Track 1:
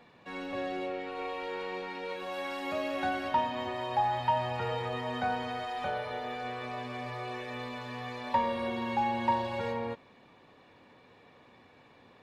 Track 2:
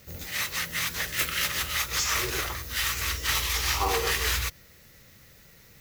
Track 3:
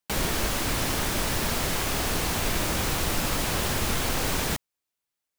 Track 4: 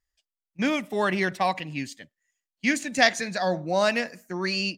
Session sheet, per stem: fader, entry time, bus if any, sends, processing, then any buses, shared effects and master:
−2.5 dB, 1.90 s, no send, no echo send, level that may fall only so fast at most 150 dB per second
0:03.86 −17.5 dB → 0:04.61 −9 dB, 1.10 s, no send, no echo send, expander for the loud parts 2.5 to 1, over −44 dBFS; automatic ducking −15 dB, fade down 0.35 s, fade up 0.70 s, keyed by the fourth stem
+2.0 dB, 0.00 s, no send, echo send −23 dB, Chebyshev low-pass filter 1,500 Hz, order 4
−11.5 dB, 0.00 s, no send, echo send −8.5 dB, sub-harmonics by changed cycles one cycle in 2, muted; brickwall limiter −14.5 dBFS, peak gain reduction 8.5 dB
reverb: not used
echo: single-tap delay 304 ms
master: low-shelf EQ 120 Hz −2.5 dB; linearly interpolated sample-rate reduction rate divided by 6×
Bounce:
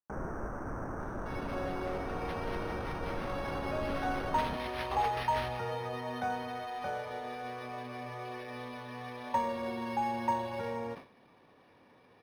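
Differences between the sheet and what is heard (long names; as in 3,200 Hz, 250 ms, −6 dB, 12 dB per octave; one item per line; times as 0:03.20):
stem 1: entry 1.90 s → 1.00 s
stem 3 +2.0 dB → −8.0 dB
stem 4: muted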